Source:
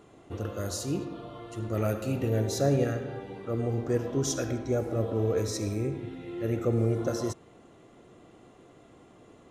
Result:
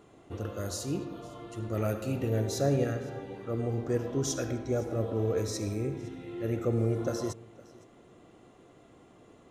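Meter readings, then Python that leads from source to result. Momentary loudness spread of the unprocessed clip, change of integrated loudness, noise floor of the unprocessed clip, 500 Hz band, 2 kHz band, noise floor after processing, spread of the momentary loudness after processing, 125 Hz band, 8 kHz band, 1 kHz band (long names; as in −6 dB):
12 LU, −2.0 dB, −56 dBFS, −2.0 dB, −2.0 dB, −57 dBFS, 12 LU, −2.0 dB, −2.0 dB, −2.0 dB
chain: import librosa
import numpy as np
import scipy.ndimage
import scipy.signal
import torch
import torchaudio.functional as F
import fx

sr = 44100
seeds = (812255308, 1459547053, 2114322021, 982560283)

y = x + 10.0 ** (-22.5 / 20.0) * np.pad(x, (int(511 * sr / 1000.0), 0))[:len(x)]
y = F.gain(torch.from_numpy(y), -2.0).numpy()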